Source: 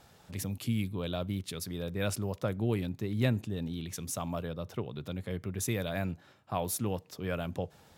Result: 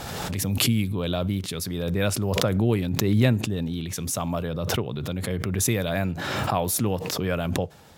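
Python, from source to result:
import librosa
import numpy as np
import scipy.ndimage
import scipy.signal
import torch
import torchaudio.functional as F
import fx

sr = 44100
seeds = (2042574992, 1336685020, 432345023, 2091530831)

y = fx.pre_swell(x, sr, db_per_s=25.0)
y = y * librosa.db_to_amplitude(7.5)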